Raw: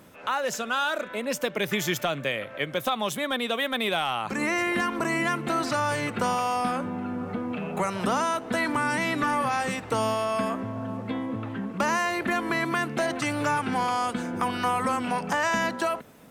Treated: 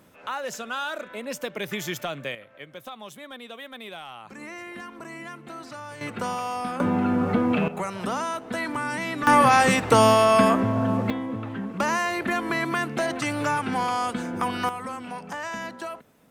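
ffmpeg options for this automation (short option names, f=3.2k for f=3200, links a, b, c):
-af "asetnsamples=n=441:p=0,asendcmd='2.35 volume volume -13dB;6.01 volume volume -3.5dB;6.8 volume volume 9dB;7.68 volume volume -3dB;9.27 volume volume 9.5dB;11.1 volume volume 0.5dB;14.69 volume volume -8dB',volume=-4dB"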